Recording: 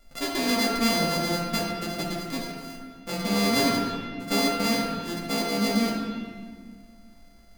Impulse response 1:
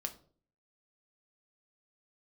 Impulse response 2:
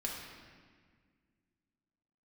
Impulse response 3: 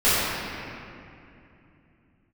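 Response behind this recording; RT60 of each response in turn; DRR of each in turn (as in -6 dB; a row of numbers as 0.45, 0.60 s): 2; 0.50, 1.7, 2.7 s; 5.0, -3.0, -15.5 dB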